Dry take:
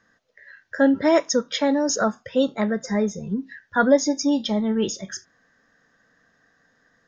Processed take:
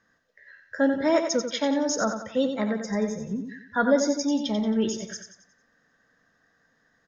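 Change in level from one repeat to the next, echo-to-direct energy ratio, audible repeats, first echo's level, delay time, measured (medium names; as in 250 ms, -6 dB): -7.5 dB, -6.5 dB, 4, -7.5 dB, 90 ms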